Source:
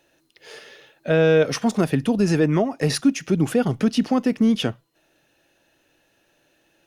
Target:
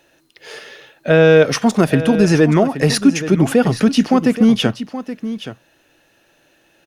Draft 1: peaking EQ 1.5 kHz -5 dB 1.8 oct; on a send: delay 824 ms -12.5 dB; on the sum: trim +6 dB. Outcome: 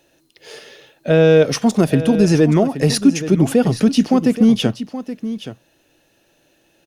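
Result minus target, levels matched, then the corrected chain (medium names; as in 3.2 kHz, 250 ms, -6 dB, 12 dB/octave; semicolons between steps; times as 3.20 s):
2 kHz band -5.0 dB
peaking EQ 1.5 kHz +2 dB 1.8 oct; on a send: delay 824 ms -12.5 dB; on the sum: trim +6 dB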